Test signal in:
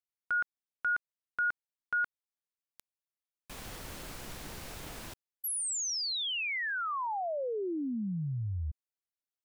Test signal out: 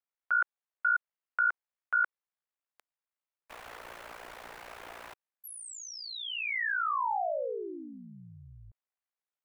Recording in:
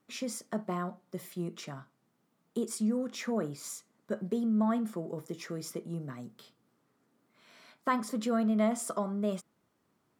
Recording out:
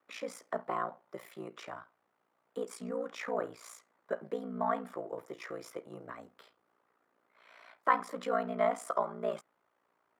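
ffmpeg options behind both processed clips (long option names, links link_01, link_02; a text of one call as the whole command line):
ffmpeg -i in.wav -filter_complex "[0:a]aeval=exprs='val(0)*sin(2*PI*29*n/s)':channel_layout=same,acontrast=85,acrossover=split=460 2500:gain=0.0891 1 0.178[link_01][link_02][link_03];[link_01][link_02][link_03]amix=inputs=3:normalize=0" out.wav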